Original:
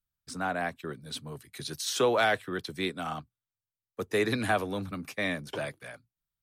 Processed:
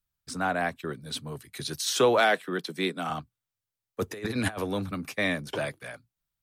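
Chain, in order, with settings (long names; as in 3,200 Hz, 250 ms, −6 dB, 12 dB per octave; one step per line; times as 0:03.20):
0:02.20–0:03.10: elliptic high-pass filter 160 Hz
0:04.00–0:04.58: compressor whose output falls as the input rises −33 dBFS, ratio −0.5
level +3.5 dB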